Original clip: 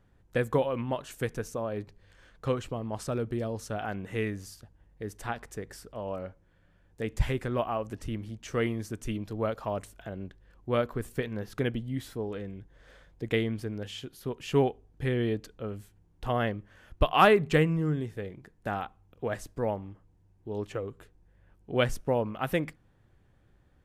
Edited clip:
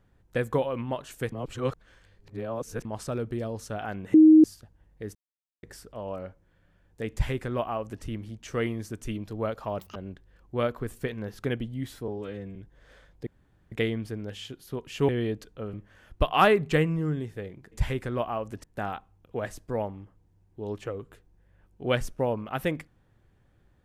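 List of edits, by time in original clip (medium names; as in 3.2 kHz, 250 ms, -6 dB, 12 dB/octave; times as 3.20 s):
1.32–2.85 s: reverse
4.14–4.44 s: bleep 313 Hz -10.5 dBFS
5.15–5.63 s: mute
7.11–8.03 s: copy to 18.52 s
9.79–10.10 s: speed 186%
12.22–12.54 s: stretch 1.5×
13.25 s: insert room tone 0.45 s
14.62–15.11 s: delete
15.76–16.54 s: delete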